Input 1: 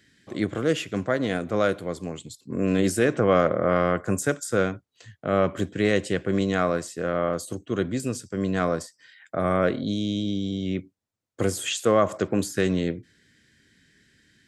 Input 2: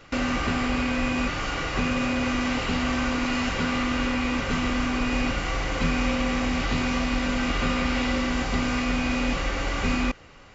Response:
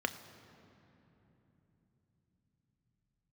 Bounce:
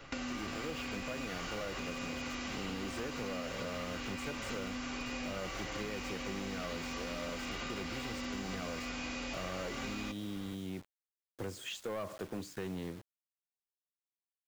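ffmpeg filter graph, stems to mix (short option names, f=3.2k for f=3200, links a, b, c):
-filter_complex "[0:a]asoftclip=type=tanh:threshold=-19.5dB,lowpass=5.4k,acrusher=bits=6:mix=0:aa=0.000001,volume=-11dB[a];[1:a]acrossover=split=220|3500[b][c][d];[b]acompressor=threshold=-44dB:ratio=4[e];[c]acompressor=threshold=-37dB:ratio=4[f];[d]acompressor=threshold=-42dB:ratio=4[g];[e][f][g]amix=inputs=3:normalize=0,flanger=delay=7.2:depth=7.4:regen=68:speed=0.2:shape=triangular,volume=2dB[h];[a][h]amix=inputs=2:normalize=0,acompressor=threshold=-36dB:ratio=6"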